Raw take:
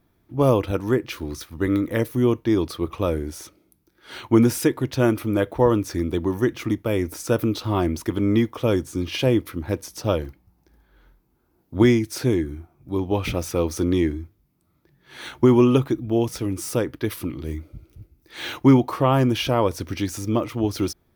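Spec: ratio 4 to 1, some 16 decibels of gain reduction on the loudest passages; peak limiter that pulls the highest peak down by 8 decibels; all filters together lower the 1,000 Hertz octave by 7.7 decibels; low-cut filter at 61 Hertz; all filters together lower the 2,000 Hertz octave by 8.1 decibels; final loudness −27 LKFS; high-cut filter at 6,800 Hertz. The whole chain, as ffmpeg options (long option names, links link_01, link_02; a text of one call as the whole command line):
ffmpeg -i in.wav -af "highpass=61,lowpass=6800,equalizer=frequency=1000:width_type=o:gain=-8,equalizer=frequency=2000:width_type=o:gain=-8,acompressor=threshold=-31dB:ratio=4,volume=10dB,alimiter=limit=-15.5dB:level=0:latency=1" out.wav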